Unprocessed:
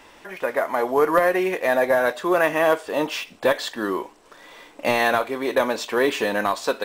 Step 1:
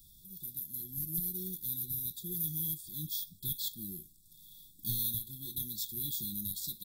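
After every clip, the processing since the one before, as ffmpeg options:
-af "afftfilt=real='re*(1-between(b*sr/4096,380,3300))':imag='im*(1-between(b*sr/4096,380,3300))':win_size=4096:overlap=0.75,firequalizer=gain_entry='entry(160,0);entry(260,-24);entry(380,-28);entry(960,-9);entry(6100,-10);entry(13000,12)':delay=0.05:min_phase=1"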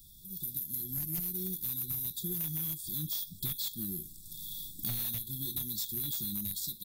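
-af "dynaudnorm=f=200:g=5:m=10.5dB,aeval=exprs='0.376*sin(PI/2*2.24*val(0)/0.376)':c=same,acompressor=threshold=-26dB:ratio=5,volume=-8dB"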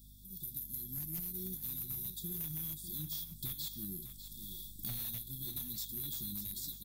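-af "aeval=exprs='val(0)+0.00251*(sin(2*PI*50*n/s)+sin(2*PI*2*50*n/s)/2+sin(2*PI*3*50*n/s)/3+sin(2*PI*4*50*n/s)/4+sin(2*PI*5*50*n/s)/5)':c=same,flanger=delay=3.2:depth=4.6:regen=-85:speed=0.69:shape=triangular,aecho=1:1:599:0.282,volume=-1dB"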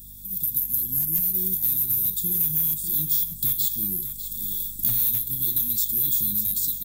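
-af "aexciter=amount=2:drive=6.9:freq=6.8k,volume=9dB"

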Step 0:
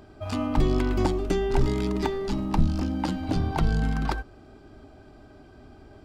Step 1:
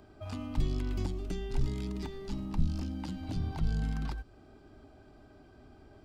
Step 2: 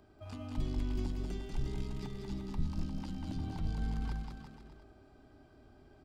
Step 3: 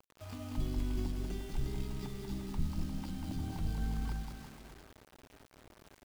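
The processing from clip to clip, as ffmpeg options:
-filter_complex "[0:a]acrossover=split=220|2400[a][b][c];[b]acompressor=threshold=-38dB:ratio=5[d];[c]alimiter=level_in=9.5dB:limit=-24dB:level=0:latency=1:release=88,volume=-9.5dB[e];[a][d][e]amix=inputs=3:normalize=0,volume=-6.5dB"
-af "aecho=1:1:190|351.5|488.8|605.5|704.6:0.631|0.398|0.251|0.158|0.1,volume=-6dB"
-af "acrusher=bits=8:mix=0:aa=0.000001"

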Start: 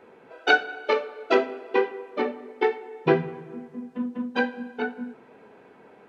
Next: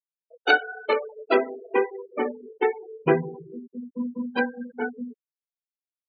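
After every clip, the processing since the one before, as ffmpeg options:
-af "afftfilt=real='re*gte(hypot(re,im),0.0447)':imag='im*gte(hypot(re,im),0.0447)':win_size=1024:overlap=0.75"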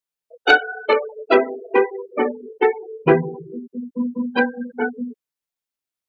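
-af "acontrast=37,volume=1dB"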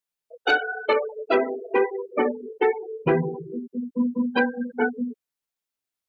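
-af "alimiter=limit=-11dB:level=0:latency=1:release=68"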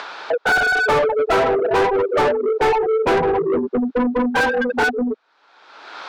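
-filter_complex "[0:a]highpass=f=210:w=0.5412,highpass=f=210:w=1.3066,equalizer=f=230:t=q:w=4:g=-9,equalizer=f=880:t=q:w=4:g=5,equalizer=f=1.4k:t=q:w=4:g=7,equalizer=f=2k:t=q:w=4:g=-6,equalizer=f=2.9k:t=q:w=4:g=-7,lowpass=f=4.1k:w=0.5412,lowpass=f=4.1k:w=1.3066,acompressor=mode=upward:threshold=-22dB:ratio=2.5,asplit=2[a][b];[b]highpass=f=720:p=1,volume=33dB,asoftclip=type=tanh:threshold=-6dB[c];[a][c]amix=inputs=2:normalize=0,lowpass=f=2k:p=1,volume=-6dB,volume=-3dB"

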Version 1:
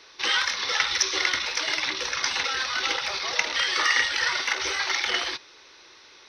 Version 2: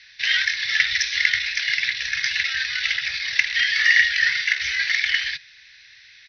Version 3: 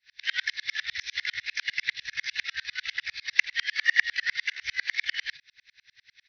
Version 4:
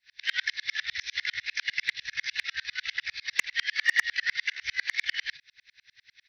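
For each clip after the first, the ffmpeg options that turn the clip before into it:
-af "firequalizer=gain_entry='entry(140,0);entry(240,-24);entry(340,-27);entry(1200,-22);entry(1700,7);entry(3000,0);entry(4700,0);entry(8300,-18);entry(13000,-21)':delay=0.05:min_phase=1,volume=2dB"
-af "aeval=exprs='val(0)*pow(10,-39*if(lt(mod(-10*n/s,1),2*abs(-10)/1000),1-mod(-10*n/s,1)/(2*abs(-10)/1000),(mod(-10*n/s,1)-2*abs(-10)/1000)/(1-2*abs(-10)/1000))/20)':c=same"
-af "asoftclip=type=hard:threshold=-13.5dB"

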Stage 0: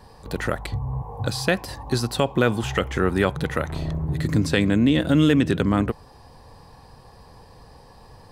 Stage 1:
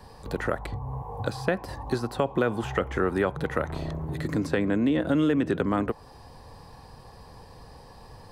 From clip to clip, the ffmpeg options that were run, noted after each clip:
-filter_complex "[0:a]acrossover=split=270|1800[a][b][c];[a]acompressor=threshold=-33dB:ratio=4[d];[b]acompressor=threshold=-21dB:ratio=4[e];[c]acompressor=threshold=-46dB:ratio=4[f];[d][e][f]amix=inputs=3:normalize=0"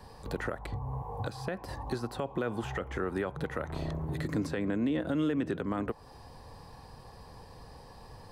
-af "alimiter=limit=-19.5dB:level=0:latency=1:release=237,volume=-2.5dB"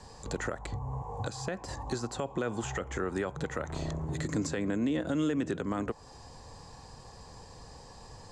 -af "lowpass=f=7.1k:t=q:w=7.4"

